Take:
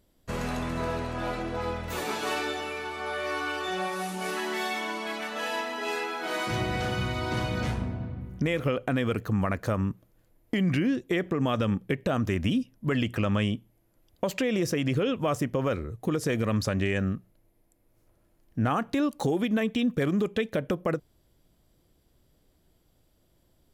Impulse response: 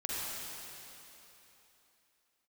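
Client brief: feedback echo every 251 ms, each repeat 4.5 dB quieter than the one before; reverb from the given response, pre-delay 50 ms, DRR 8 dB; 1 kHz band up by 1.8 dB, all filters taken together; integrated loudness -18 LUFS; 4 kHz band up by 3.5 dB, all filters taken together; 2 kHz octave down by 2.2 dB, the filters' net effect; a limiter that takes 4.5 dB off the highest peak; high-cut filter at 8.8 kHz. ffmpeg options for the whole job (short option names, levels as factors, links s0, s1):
-filter_complex "[0:a]lowpass=8800,equalizer=f=1000:t=o:g=3.5,equalizer=f=2000:t=o:g=-6,equalizer=f=4000:t=o:g=7,alimiter=limit=0.112:level=0:latency=1,aecho=1:1:251|502|753|1004|1255|1506|1757|2008|2259:0.596|0.357|0.214|0.129|0.0772|0.0463|0.0278|0.0167|0.01,asplit=2[s0][s1];[1:a]atrim=start_sample=2205,adelay=50[s2];[s1][s2]afir=irnorm=-1:irlink=0,volume=0.224[s3];[s0][s3]amix=inputs=2:normalize=0,volume=2.99"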